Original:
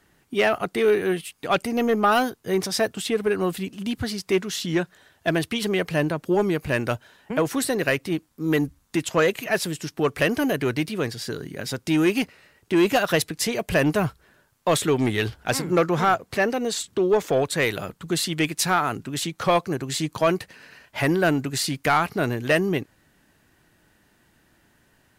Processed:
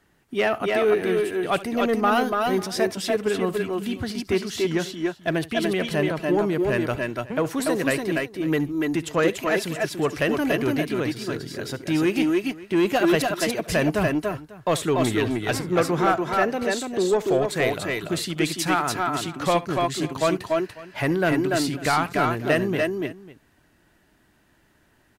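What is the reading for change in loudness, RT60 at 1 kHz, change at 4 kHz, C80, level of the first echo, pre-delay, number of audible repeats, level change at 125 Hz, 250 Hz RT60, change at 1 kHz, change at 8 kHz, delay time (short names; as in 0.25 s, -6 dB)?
0.0 dB, none, -1.5 dB, none, -18.5 dB, none, 3, -1.0 dB, none, 0.0 dB, -3.0 dB, 69 ms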